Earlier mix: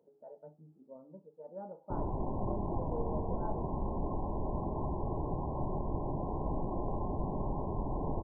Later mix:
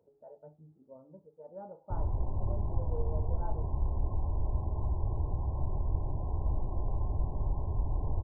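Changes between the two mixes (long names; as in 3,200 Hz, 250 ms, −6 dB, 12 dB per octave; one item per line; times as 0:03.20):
background −6.5 dB
master: add low shelf with overshoot 130 Hz +12.5 dB, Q 1.5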